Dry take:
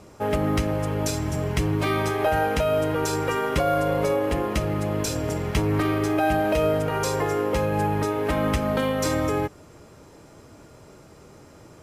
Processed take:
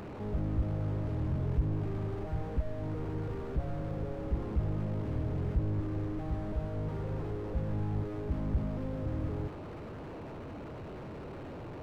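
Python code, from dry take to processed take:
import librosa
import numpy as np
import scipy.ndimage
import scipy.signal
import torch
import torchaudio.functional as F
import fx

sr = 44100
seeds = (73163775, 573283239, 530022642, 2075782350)

y = fx.delta_mod(x, sr, bps=16000, step_db=-35.5)
y = fx.slew_limit(y, sr, full_power_hz=5.1)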